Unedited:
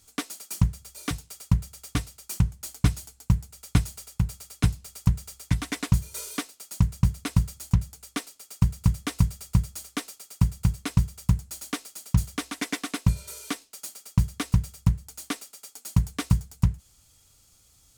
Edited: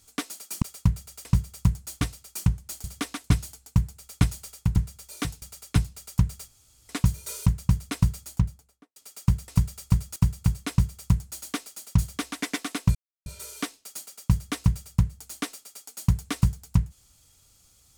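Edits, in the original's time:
0.62–1.28 move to 4.3
5.36–5.77 room tone
6.34–6.8 cut
7.54–8.3 studio fade out
8.82–9.11 cut
9.79–10.35 cut
10.89–11.61 copy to 1.91
12.21–12.61 copy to 2.78
13.14 insert silence 0.31 s

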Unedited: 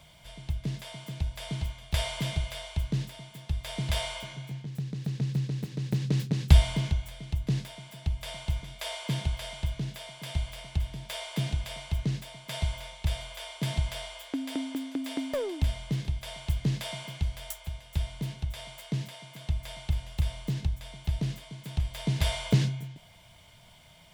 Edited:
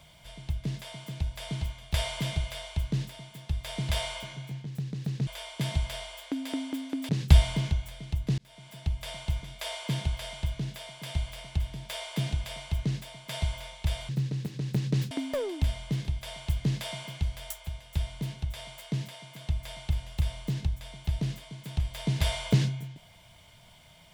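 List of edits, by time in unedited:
5.27–6.29 swap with 13.29–15.11
7.58–7.97 fade in

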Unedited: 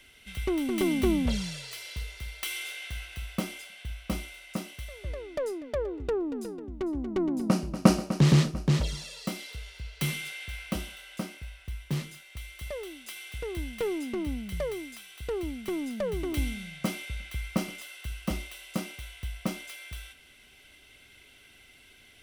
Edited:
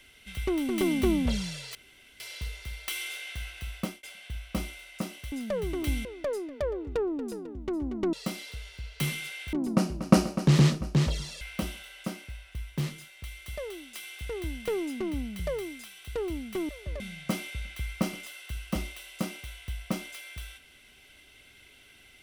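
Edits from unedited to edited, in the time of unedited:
1.75 insert room tone 0.45 s
3.26–3.58 fade out equal-power
4.87–5.18 swap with 15.82–16.55
9.14–10.54 move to 7.26

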